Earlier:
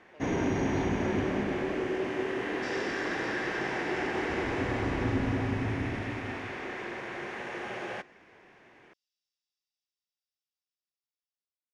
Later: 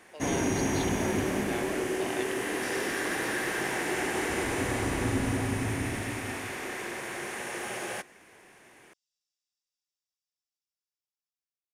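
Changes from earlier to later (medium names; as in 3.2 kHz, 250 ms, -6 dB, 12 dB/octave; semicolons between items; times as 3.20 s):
speech +9.0 dB; second sound: add treble shelf 2.7 kHz -10 dB; master: remove distance through air 200 m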